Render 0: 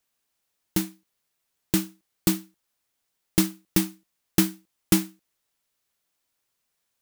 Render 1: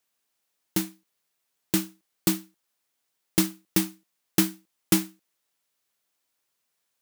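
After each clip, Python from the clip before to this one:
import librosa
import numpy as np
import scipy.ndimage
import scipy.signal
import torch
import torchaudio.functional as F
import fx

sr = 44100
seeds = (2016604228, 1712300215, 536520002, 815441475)

y = fx.highpass(x, sr, hz=170.0, slope=6)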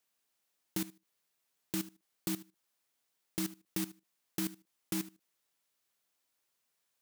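y = fx.level_steps(x, sr, step_db=16)
y = F.gain(torch.from_numpy(y), -1.0).numpy()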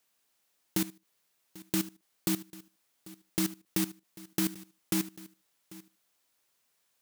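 y = x + 10.0 ** (-19.5 / 20.0) * np.pad(x, (int(793 * sr / 1000.0), 0))[:len(x)]
y = F.gain(torch.from_numpy(y), 6.0).numpy()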